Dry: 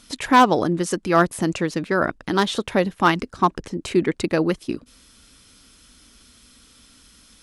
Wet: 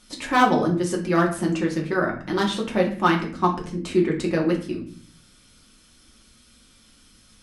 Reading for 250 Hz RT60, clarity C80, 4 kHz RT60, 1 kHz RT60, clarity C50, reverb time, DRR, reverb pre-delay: 0.85 s, 13.0 dB, 0.35 s, 0.45 s, 9.0 dB, 0.50 s, -1.5 dB, 3 ms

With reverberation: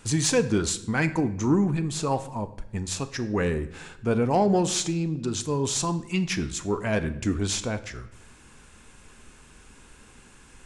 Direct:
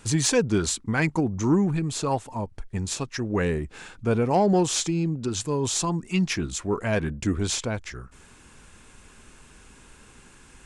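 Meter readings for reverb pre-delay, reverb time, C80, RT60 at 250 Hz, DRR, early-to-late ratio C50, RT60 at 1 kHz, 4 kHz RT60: 4 ms, 0.85 s, 16.5 dB, 1.0 s, 11.0 dB, 14.5 dB, 0.75 s, 0.70 s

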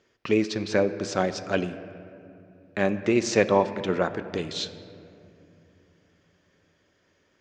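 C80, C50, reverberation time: 13.0 dB, 12.5 dB, 2.7 s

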